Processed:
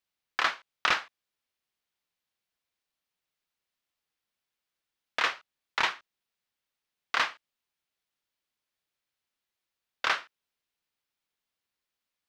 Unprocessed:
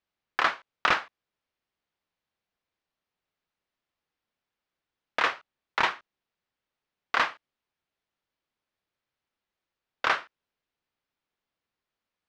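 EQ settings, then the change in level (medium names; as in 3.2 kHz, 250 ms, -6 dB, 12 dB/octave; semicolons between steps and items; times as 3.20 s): treble shelf 2.2 kHz +10.5 dB; -6.0 dB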